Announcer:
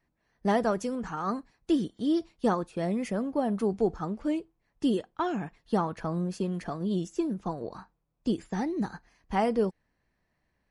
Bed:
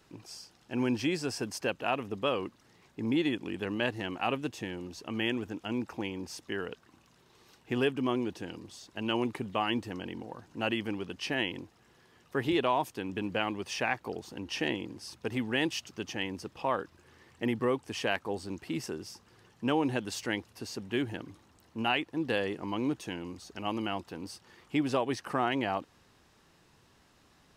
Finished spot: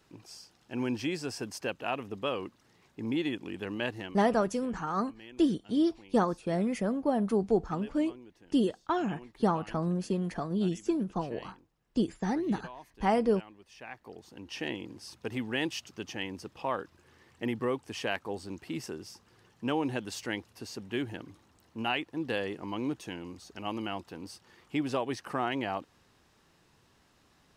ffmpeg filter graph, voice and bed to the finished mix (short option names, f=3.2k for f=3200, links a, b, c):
-filter_complex "[0:a]adelay=3700,volume=0dB[a];[1:a]volume=14.5dB,afade=t=out:st=3.98:d=0.25:silence=0.149624,afade=t=in:st=13.74:d=1.22:silence=0.141254[b];[a][b]amix=inputs=2:normalize=0"